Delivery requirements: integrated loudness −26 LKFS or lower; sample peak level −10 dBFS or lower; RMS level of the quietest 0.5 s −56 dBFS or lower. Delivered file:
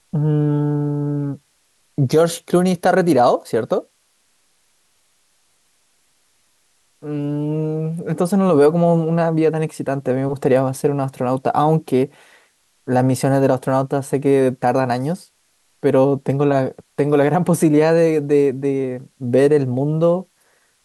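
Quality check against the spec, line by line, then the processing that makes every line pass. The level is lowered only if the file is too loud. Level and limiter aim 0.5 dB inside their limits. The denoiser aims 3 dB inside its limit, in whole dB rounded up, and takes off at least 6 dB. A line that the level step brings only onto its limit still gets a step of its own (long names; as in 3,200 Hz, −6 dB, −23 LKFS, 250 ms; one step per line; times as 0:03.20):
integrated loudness −18.0 LKFS: out of spec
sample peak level −4.5 dBFS: out of spec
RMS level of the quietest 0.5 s −62 dBFS: in spec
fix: level −8.5 dB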